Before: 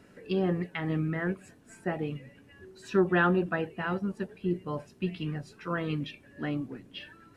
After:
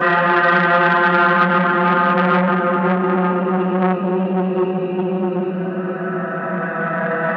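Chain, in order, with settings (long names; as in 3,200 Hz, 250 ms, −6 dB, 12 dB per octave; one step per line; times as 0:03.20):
extreme stretch with random phases 22×, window 0.25 s, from 0:03.19
convolution reverb RT60 0.50 s, pre-delay 3 ms, DRR −13 dB
saturating transformer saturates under 1,100 Hz
level −6.5 dB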